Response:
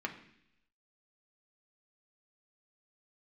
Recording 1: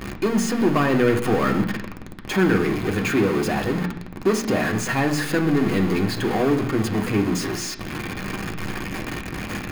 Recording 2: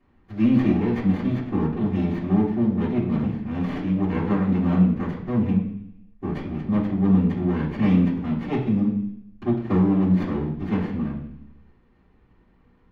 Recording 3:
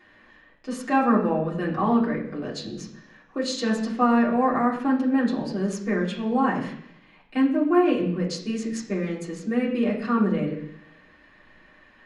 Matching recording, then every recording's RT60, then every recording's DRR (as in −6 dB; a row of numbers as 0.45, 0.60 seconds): 1; 0.70, 0.70, 0.70 seconds; 1.5, −15.5, −8.0 decibels